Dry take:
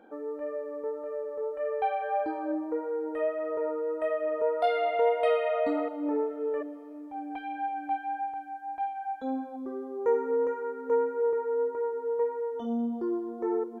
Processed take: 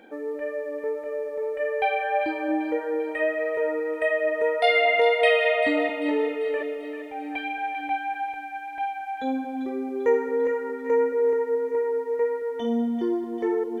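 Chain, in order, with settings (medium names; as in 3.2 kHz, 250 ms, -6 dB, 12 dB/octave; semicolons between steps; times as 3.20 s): resonant high shelf 1.6 kHz +7 dB, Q 3; two-band feedback delay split 820 Hz, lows 225 ms, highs 393 ms, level -9 dB; trim +5 dB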